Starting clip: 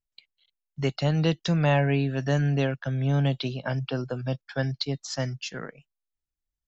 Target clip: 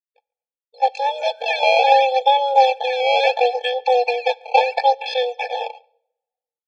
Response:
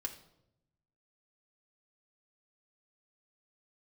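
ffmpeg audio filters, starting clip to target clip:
-filter_complex "[0:a]agate=range=-33dB:threshold=-44dB:ratio=3:detection=peak,dynaudnorm=framelen=360:gausssize=5:maxgain=14dB,asetrate=85689,aresample=44100,atempo=0.514651,acrusher=samples=14:mix=1:aa=0.000001:lfo=1:lforange=22.4:lforate=0.73,asuperstop=centerf=1300:order=12:qfactor=1.5,highpass=frequency=260:width=0.5412,highpass=frequency=260:width=1.3066,equalizer=frequency=290:width_type=q:width=4:gain=9,equalizer=frequency=610:width_type=q:width=4:gain=-10,equalizer=frequency=910:width_type=q:width=4:gain=8,lowpass=frequency=3600:width=0.5412,lowpass=frequency=3600:width=1.3066,asplit=2[link_01][link_02];[link_02]adelay=140,highpass=300,lowpass=3400,asoftclip=type=hard:threshold=-10.5dB,volume=-29dB[link_03];[link_01][link_03]amix=inputs=2:normalize=0,asplit=2[link_04][link_05];[1:a]atrim=start_sample=2205[link_06];[link_05][link_06]afir=irnorm=-1:irlink=0,volume=-13dB[link_07];[link_04][link_07]amix=inputs=2:normalize=0,afftfilt=real='re*eq(mod(floor(b*sr/1024/450),2),1)':imag='im*eq(mod(floor(b*sr/1024/450),2),1)':win_size=1024:overlap=0.75,volume=6dB"

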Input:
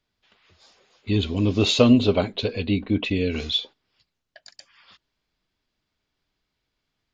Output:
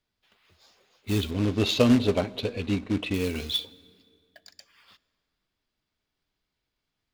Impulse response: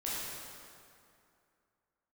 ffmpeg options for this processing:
-filter_complex "[0:a]acrusher=bits=3:mode=log:mix=0:aa=0.000001,asettb=1/sr,asplit=3[link_01][link_02][link_03];[link_01]atrim=end=1.314[link_04];[link_02]atrim=start=1.31:end=3.14,asetpts=PTS-STARTPTS,afade=type=in:duration=0.004:curve=qsin,afade=type=out:start_time=1.826:duration=0.004:curve=qsin,adynamicsmooth=sensitivity=1.5:basefreq=4400[link_05];[link_03]atrim=start=3.136[link_06];[link_04][link_05]acrossfade=duration=0.004:curve1=hsin:curve2=qsin[link_07];[link_07][link_06]acrossfade=duration=0.004:curve1=qsin:curve2=hsin,asplit=2[link_08][link_09];[1:a]atrim=start_sample=2205[link_10];[link_09][link_10]afir=irnorm=-1:irlink=0,volume=-23.5dB[link_11];[link_08][link_11]amix=inputs=2:normalize=0,volume=-4.5dB"

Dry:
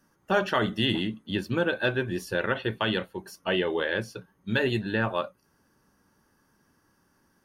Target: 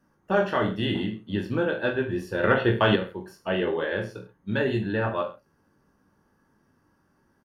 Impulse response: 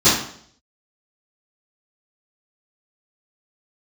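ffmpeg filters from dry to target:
-filter_complex "[0:a]highshelf=frequency=2400:gain=-11.5,aecho=1:1:20|43|69.45|99.87|134.8:0.631|0.398|0.251|0.158|0.1,asettb=1/sr,asplit=3[link_01][link_02][link_03];[link_01]atrim=end=2.434[link_04];[link_02]atrim=start=2.43:end=2.96,asetpts=PTS-STARTPTS,afade=type=in:duration=0.004:curve=qsin,afade=type=out:start_time=0.526:duration=0.004:curve=qsin,acontrast=84[link_05];[link_03]atrim=start=2.956[link_06];[link_04][link_05]acrossfade=duration=0.004:curve1=hsin:curve2=qsin[link_07];[link_07][link_06]acrossfade=duration=0.004:curve1=qsin:curve2=hsin"

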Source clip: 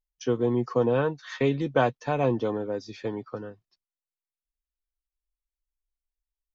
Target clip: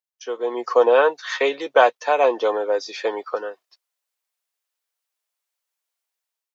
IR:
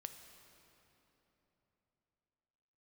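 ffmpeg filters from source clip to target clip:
-af "highpass=frequency=480:width=0.5412,highpass=frequency=480:width=1.3066,dynaudnorm=framelen=210:gausssize=5:maxgain=13.5dB"

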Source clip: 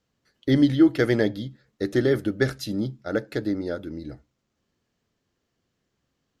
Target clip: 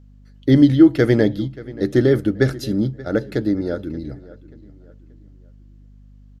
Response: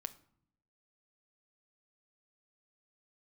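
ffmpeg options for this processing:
-filter_complex "[0:a]lowshelf=frequency=450:gain=7,aeval=exprs='val(0)+0.00447*(sin(2*PI*50*n/s)+sin(2*PI*2*50*n/s)/2+sin(2*PI*3*50*n/s)/3+sin(2*PI*4*50*n/s)/4+sin(2*PI*5*50*n/s)/5)':channel_layout=same,asplit=2[link_01][link_02];[link_02]adelay=581,lowpass=frequency=3900:poles=1,volume=-19dB,asplit=2[link_03][link_04];[link_04]adelay=581,lowpass=frequency=3900:poles=1,volume=0.38,asplit=2[link_05][link_06];[link_06]adelay=581,lowpass=frequency=3900:poles=1,volume=0.38[link_07];[link_03][link_05][link_07]amix=inputs=3:normalize=0[link_08];[link_01][link_08]amix=inputs=2:normalize=0,volume=1.5dB"

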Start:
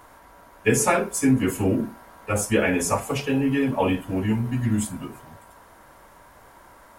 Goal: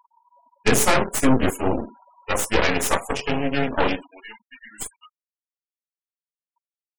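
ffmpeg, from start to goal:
ffmpeg -i in.wav -af "asetnsamples=nb_out_samples=441:pad=0,asendcmd='1.5 highpass f 310;4.07 highpass f 1300',highpass=96,aeval=exprs='0.447*(cos(1*acos(clip(val(0)/0.447,-1,1)))-cos(1*PI/2))+0.0562*(cos(2*acos(clip(val(0)/0.447,-1,1)))-cos(2*PI/2))+0.0631*(cos(4*acos(clip(val(0)/0.447,-1,1)))-cos(4*PI/2))+0.0891*(cos(8*acos(clip(val(0)/0.447,-1,1)))-cos(8*PI/2))':channel_layout=same,afftfilt=real='re*gte(hypot(re,im),0.0178)':imag='im*gte(hypot(re,im),0.0178)':win_size=1024:overlap=0.75" out.wav

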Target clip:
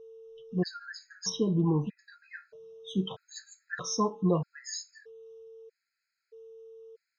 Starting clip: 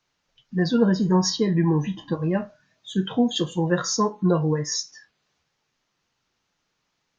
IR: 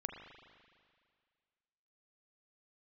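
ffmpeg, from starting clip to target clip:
-filter_complex "[0:a]asettb=1/sr,asplit=3[link_01][link_02][link_03];[link_01]atrim=end=1.594[link_04];[link_02]atrim=start=1.59:end=1.99,asetpts=PTS-STARTPTS,afade=type=in:duration=0.004:curve=qsin,afade=type=out:start_time=0.396:duration=0.004:curve=qsin,adynamicsmooth=sensitivity=1:basefreq=2300[link_05];[link_03]atrim=start=1.986[link_06];[link_04][link_05]acrossfade=duration=0.004:curve1=hsin:curve2=qsin[link_07];[link_07][link_06]acrossfade=duration=0.004:curve1=qsin:curve2=hsin,aeval=exprs='val(0)+0.00891*sin(2*PI*450*n/s)':channel_layout=same,afftfilt=real='re*gt(sin(2*PI*0.79*pts/sr)*(1-2*mod(floor(b*sr/1024/1300),2)),0)':imag='im*gt(sin(2*PI*0.79*pts/sr)*(1-2*mod(floor(b*sr/1024/1300),2)),0)':win_size=1024:overlap=0.75,volume=-5.5dB"

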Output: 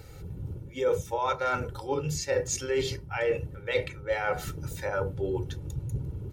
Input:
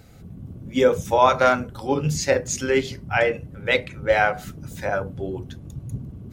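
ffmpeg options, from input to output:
ffmpeg -i in.wav -af "areverse,acompressor=threshold=-28dB:ratio=6,areverse,aecho=1:1:2.2:0.73" out.wav

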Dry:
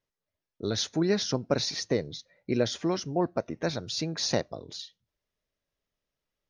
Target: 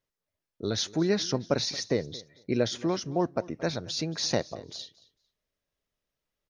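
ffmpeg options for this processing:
ffmpeg -i in.wav -af "aecho=1:1:225|450:0.0891|0.016" out.wav

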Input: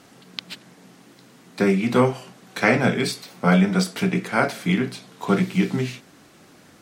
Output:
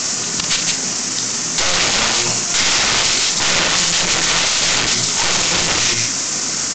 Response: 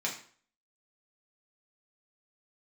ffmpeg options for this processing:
-filter_complex "[0:a]atempo=1.1,acrossover=split=1500[link_01][link_02];[link_01]bandreject=frequency=60:width_type=h:width=6,bandreject=frequency=120:width_type=h:width=6,bandreject=frequency=180:width_type=h:width=6[link_03];[link_02]aexciter=amount=7.3:drive=2.5:freq=5700[link_04];[link_03][link_04]amix=inputs=2:normalize=0,aeval=exprs='(tanh(15.8*val(0)+0.6)-tanh(0.6))/15.8':channel_layout=same,asplit=2[link_05][link_06];[link_06]aecho=0:1:146:0.2[link_07];[link_05][link_07]amix=inputs=2:normalize=0,aeval=exprs='(mod(33.5*val(0)+1,2)-1)/33.5':channel_layout=same,tiltshelf=frequency=1300:gain=-6,bandreject=frequency=1800:width=21,asplit=2[link_08][link_09];[link_09]adelay=39,volume=-11dB[link_10];[link_08][link_10]amix=inputs=2:normalize=0,asetrate=40517,aresample=44100,alimiter=level_in=28.5dB:limit=-1dB:release=50:level=0:latency=1,volume=-1.5dB" -ar 16000 -c:a pcm_alaw

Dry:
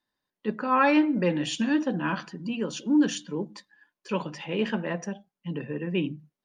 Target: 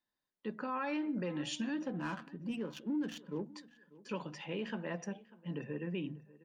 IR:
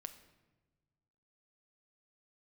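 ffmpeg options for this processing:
-filter_complex "[0:a]alimiter=limit=-21.5dB:level=0:latency=1:release=158,asettb=1/sr,asplit=3[link_01][link_02][link_03];[link_01]atrim=end=1.874[link_04];[link_02]atrim=start=1.87:end=3.44,asetpts=PTS-STARTPTS,afade=type=in:duration=0.004:curve=qsin,afade=type=out:start_time=1.566:duration=0.004:curve=qsin,adynamicsmooth=sensitivity=6:basefreq=1400[link_05];[link_03]atrim=start=3.436[link_06];[link_04][link_05]acrossfade=duration=0.004:curve1=hsin:curve2=qsin[link_07];[link_07][link_06]acrossfade=duration=0.004:curve1=qsin:curve2=hsin,asplit=2[link_08][link_09];[link_09]adelay=593,lowpass=frequency=2800:poles=1,volume=-20dB,asplit=2[link_10][link_11];[link_11]adelay=593,lowpass=frequency=2800:poles=1,volume=0.29[link_12];[link_10][link_12]amix=inputs=2:normalize=0[link_13];[link_08][link_13]amix=inputs=2:normalize=0,volume=-7.5dB"

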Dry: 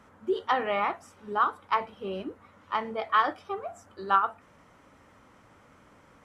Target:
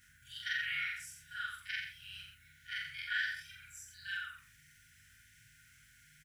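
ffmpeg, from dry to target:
ffmpeg -i in.wav -filter_complex "[0:a]afftfilt=real='re':imag='-im':win_size=4096:overlap=0.75,aemphasis=mode=production:type=riaa,asplit=2[link_01][link_02];[link_02]alimiter=limit=-24dB:level=0:latency=1:release=33,volume=-1.5dB[link_03];[link_01][link_03]amix=inputs=2:normalize=0,tiltshelf=frequency=970:gain=6,afftfilt=real='re*(1-between(b*sr/4096,170,1400))':imag='im*(1-between(b*sr/4096,170,1400))':win_size=4096:overlap=0.75,aeval=exprs='val(0)+0.000251*(sin(2*PI*50*n/s)+sin(2*PI*2*50*n/s)/2+sin(2*PI*3*50*n/s)/3+sin(2*PI*4*50*n/s)/4+sin(2*PI*5*50*n/s)/5)':channel_layout=same,flanger=delay=7.5:depth=9.5:regen=-63:speed=1.4:shape=sinusoidal,asplit=2[link_04][link_05];[link_05]aecho=0:1:87:0.447[link_06];[link_04][link_06]amix=inputs=2:normalize=0,volume=3.5dB" out.wav

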